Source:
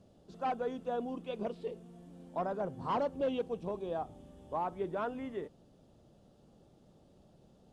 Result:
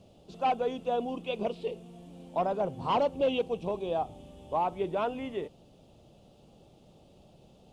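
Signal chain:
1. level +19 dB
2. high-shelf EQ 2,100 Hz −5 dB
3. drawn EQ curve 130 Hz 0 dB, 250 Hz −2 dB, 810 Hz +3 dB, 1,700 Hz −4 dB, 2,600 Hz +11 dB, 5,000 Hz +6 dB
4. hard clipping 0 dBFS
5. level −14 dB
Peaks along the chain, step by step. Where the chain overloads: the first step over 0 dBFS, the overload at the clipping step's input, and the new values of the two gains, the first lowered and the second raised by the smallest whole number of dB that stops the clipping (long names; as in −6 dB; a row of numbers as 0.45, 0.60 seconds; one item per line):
−5.0, −5.5, −4.0, −4.0, −18.0 dBFS
no step passes full scale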